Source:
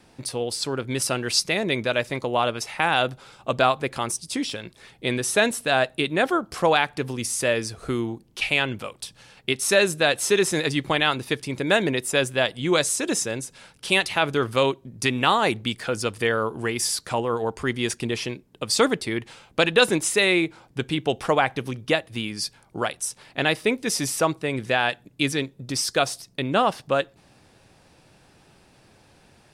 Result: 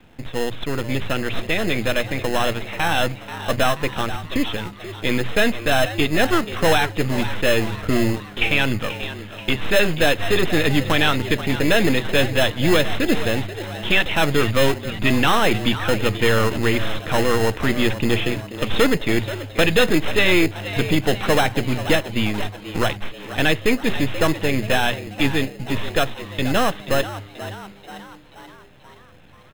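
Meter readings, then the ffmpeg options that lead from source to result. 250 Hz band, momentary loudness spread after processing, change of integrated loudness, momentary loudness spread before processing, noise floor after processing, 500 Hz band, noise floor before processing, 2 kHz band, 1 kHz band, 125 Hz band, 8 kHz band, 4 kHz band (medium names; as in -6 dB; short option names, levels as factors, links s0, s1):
+6.0 dB, 9 LU, +3.0 dB, 10 LU, -44 dBFS, +2.5 dB, -57 dBFS, +3.5 dB, +1.0 dB, +8.0 dB, -5.0 dB, +2.5 dB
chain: -filter_complex "[0:a]aeval=exprs='if(lt(val(0),0),0.251*val(0),val(0))':c=same,bandreject=f=60:t=h:w=6,bandreject=f=120:t=h:w=6,dynaudnorm=f=330:g=31:m=3.76,aresample=8000,asoftclip=type=tanh:threshold=0.15,aresample=44100,bandreject=f=390:w=12,asplit=7[s0][s1][s2][s3][s4][s5][s6];[s1]adelay=483,afreqshift=100,volume=0.224[s7];[s2]adelay=966,afreqshift=200,volume=0.126[s8];[s3]adelay=1449,afreqshift=300,volume=0.07[s9];[s4]adelay=1932,afreqshift=400,volume=0.0394[s10];[s5]adelay=2415,afreqshift=500,volume=0.0221[s11];[s6]adelay=2898,afreqshift=600,volume=0.0123[s12];[s0][s7][s8][s9][s10][s11][s12]amix=inputs=7:normalize=0,acrossover=split=860|1000[s13][s14][s15];[s13]acrusher=samples=19:mix=1:aa=0.000001[s16];[s16][s14][s15]amix=inputs=3:normalize=0,lowshelf=f=190:g=5,volume=2.24"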